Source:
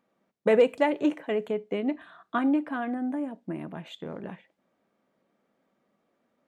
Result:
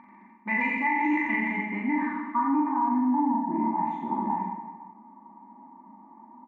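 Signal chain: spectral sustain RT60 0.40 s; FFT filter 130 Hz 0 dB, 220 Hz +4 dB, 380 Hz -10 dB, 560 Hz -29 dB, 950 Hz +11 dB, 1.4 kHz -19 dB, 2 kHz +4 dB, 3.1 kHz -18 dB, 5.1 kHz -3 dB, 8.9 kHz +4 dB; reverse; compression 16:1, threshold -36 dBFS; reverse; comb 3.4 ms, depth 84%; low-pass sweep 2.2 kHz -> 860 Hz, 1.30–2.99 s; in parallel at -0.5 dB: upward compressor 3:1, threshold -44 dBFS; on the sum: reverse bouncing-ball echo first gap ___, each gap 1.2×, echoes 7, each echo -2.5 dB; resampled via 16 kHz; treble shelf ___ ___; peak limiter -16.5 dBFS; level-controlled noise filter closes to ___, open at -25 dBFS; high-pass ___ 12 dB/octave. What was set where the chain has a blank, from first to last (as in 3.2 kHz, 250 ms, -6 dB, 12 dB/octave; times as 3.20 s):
40 ms, 3.2 kHz, +10.5 dB, 1.3 kHz, 170 Hz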